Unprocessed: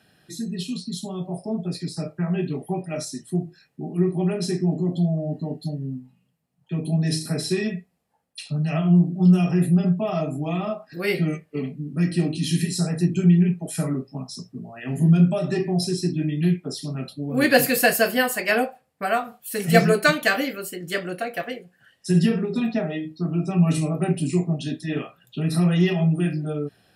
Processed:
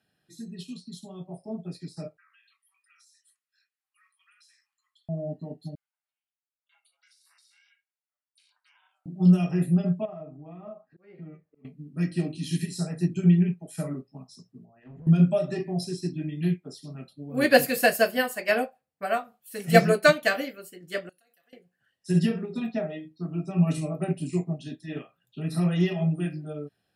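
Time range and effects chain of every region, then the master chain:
0:02.17–0:05.09: Butterworth high-pass 1,200 Hz 72 dB per octave + downward compressor 5 to 1, threshold −43 dBFS
0:05.75–0:09.06: Butterworth high-pass 970 Hz 96 dB per octave + downward compressor 12 to 1, threshold −41 dBFS + ring modulation 290 Hz
0:10.05–0:11.65: low-pass filter 1,400 Hz + downward compressor 2.5 to 1, threshold −31 dBFS + volume swells 264 ms
0:14.65–0:15.07: downward compressor 8 to 1, threshold −25 dBFS + hard clipping −29 dBFS + head-to-tape spacing loss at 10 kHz 42 dB
0:21.09–0:21.53: first-order pre-emphasis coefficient 0.9 + notch filter 2,300 Hz, Q 7 + downward compressor 10 to 1, threshold −47 dBFS
whole clip: dynamic equaliser 600 Hz, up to +7 dB, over −42 dBFS, Q 6.8; expander for the loud parts 1.5 to 1, over −39 dBFS; level −1 dB

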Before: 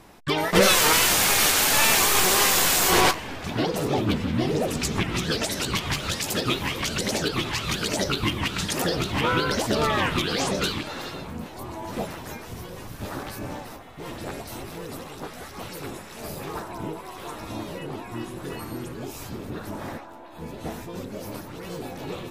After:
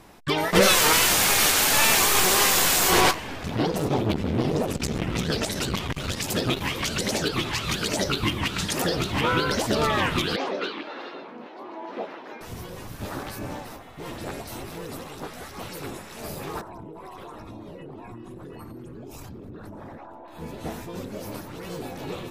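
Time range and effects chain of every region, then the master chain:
0:03.42–0:06.61: low-shelf EQ 330 Hz +5.5 dB + saturating transformer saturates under 520 Hz
0:10.36–0:12.41: high-pass filter 280 Hz 24 dB per octave + high-frequency loss of the air 280 metres
0:16.61–0:20.28: spectral envelope exaggerated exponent 1.5 + downward compressor 10 to 1, threshold −36 dBFS
whole clip: no processing

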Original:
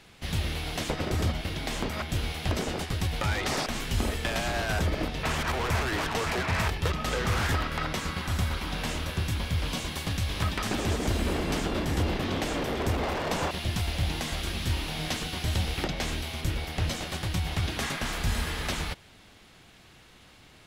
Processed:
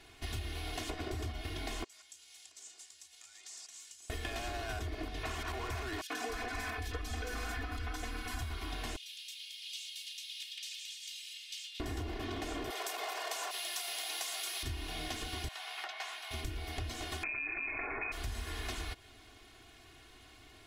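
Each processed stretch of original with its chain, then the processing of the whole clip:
0:01.84–0:04.10: downward compressor 5 to 1, threshold −29 dBFS + resonant band-pass 7,300 Hz, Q 3.1
0:06.01–0:08.41: Butterworth band-reject 900 Hz, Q 4.4 + comb filter 4 ms, depth 82% + three-band delay without the direct sound highs, mids, lows 90/280 ms, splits 150/3,200 Hz
0:08.96–0:11.80: Butterworth high-pass 2,800 Hz + high-shelf EQ 7,100 Hz −10 dB
0:12.70–0:14.63: high-pass filter 520 Hz 24 dB per octave + high-shelf EQ 4,300 Hz +12 dB
0:15.48–0:16.31: high-pass filter 790 Hz 24 dB per octave + high-shelf EQ 3,700 Hz −11 dB + double-tracking delay 14 ms −12.5 dB
0:17.23–0:18.12: voice inversion scrambler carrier 2,500 Hz + envelope flattener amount 70%
whole clip: comb filter 2.8 ms, depth 99%; downward compressor, threshold −30 dBFS; level −6 dB

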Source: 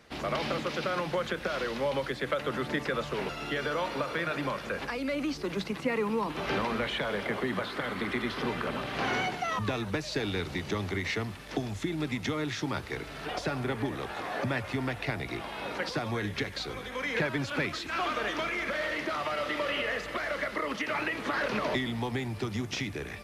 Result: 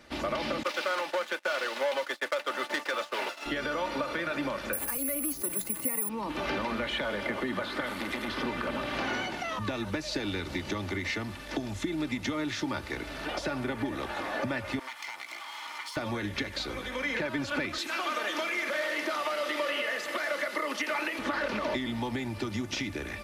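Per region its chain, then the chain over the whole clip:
0:00.63–0:03.46: downward expander −29 dBFS + leveller curve on the samples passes 3 + high-pass filter 580 Hz
0:04.73–0:06.09: high shelf with overshoot 6,200 Hz +11.5 dB, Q 1.5 + bad sample-rate conversion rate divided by 4×, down filtered, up zero stuff
0:07.86–0:08.28: high-shelf EQ 6,000 Hz +12 dB + saturating transformer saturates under 1,600 Hz
0:14.79–0:15.97: lower of the sound and its delayed copy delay 0.92 ms + high-pass filter 940 Hz + downward compressor 2 to 1, threshold −41 dBFS
0:17.78–0:21.19: high-pass filter 300 Hz + high-shelf EQ 6,000 Hz +9.5 dB
whole clip: downward compressor 3 to 1, threshold −32 dBFS; comb filter 3.4 ms, depth 47%; level +2 dB

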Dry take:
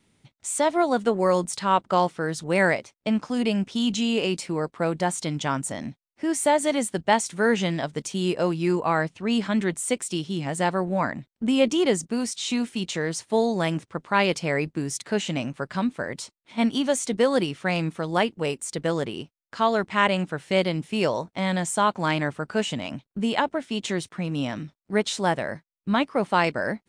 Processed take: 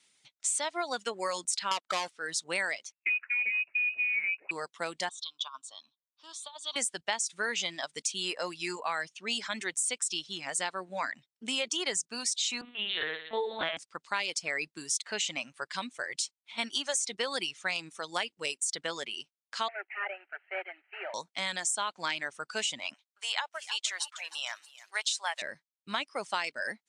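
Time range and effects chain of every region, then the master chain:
0:01.71–0:02.12: high-pass filter 180 Hz 6 dB per octave + leveller curve on the samples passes 3
0:02.92–0:04.51: high-frequency loss of the air 140 metres + notch filter 1,500 Hz, Q 14 + voice inversion scrambler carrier 2,700 Hz
0:05.09–0:06.76: pair of resonant band-passes 2,000 Hz, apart 1.7 octaves + compressor whose output falls as the input rises −36 dBFS, ratio −0.5
0:12.61–0:13.77: flutter between parallel walls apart 5 metres, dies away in 1.3 s + linear-prediction vocoder at 8 kHz pitch kept
0:19.68–0:21.14: variable-slope delta modulation 16 kbit/s + elliptic high-pass filter 400 Hz, stop band 50 dB + phaser with its sweep stopped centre 710 Hz, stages 8
0:22.94–0:25.42: high-pass filter 700 Hz 24 dB per octave + feedback echo at a low word length 311 ms, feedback 55%, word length 8 bits, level −13.5 dB
whole clip: meter weighting curve ITU-R 468; reverb reduction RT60 0.95 s; downward compressor 6 to 1, threshold −22 dBFS; level −5.5 dB

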